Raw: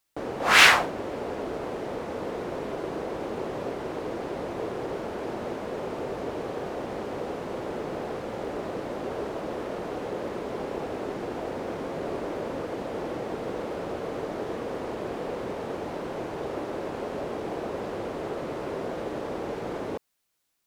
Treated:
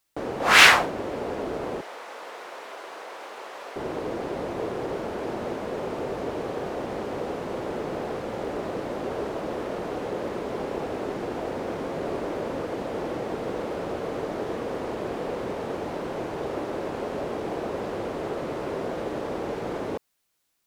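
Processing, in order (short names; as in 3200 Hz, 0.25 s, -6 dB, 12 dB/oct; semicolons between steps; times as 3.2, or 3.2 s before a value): 1.81–3.76 HPF 950 Hz 12 dB/oct; gain +2 dB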